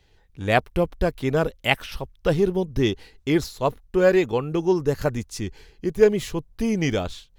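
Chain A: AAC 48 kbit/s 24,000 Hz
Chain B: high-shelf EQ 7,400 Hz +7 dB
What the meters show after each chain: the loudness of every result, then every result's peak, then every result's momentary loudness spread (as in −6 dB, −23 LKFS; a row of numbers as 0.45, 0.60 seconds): −23.5, −23.5 LKFS; −3.5, −2.5 dBFS; 12, 12 LU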